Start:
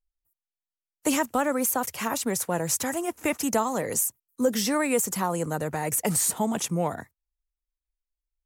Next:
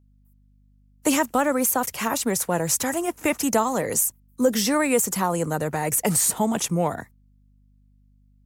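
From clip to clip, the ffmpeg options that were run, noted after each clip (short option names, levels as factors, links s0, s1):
-af "aeval=exprs='val(0)+0.001*(sin(2*PI*50*n/s)+sin(2*PI*2*50*n/s)/2+sin(2*PI*3*50*n/s)/3+sin(2*PI*4*50*n/s)/4+sin(2*PI*5*50*n/s)/5)':c=same,volume=1.5"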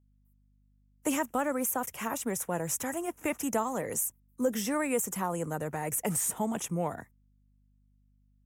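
-af "equalizer=f=4400:t=o:w=0.46:g=-13,volume=0.376"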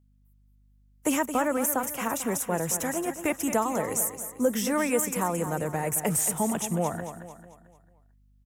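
-af "aecho=1:1:222|444|666|888|1110:0.316|0.139|0.0612|0.0269|0.0119,volume=1.58"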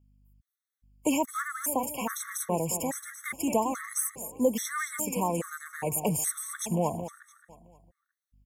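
-af "afftfilt=real='re*gt(sin(2*PI*1.2*pts/sr)*(1-2*mod(floor(b*sr/1024/1100),2)),0)':imag='im*gt(sin(2*PI*1.2*pts/sr)*(1-2*mod(floor(b*sr/1024/1100),2)),0)':win_size=1024:overlap=0.75"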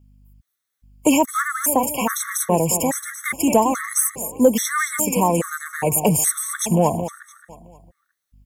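-af "acontrast=88,volume=1.5"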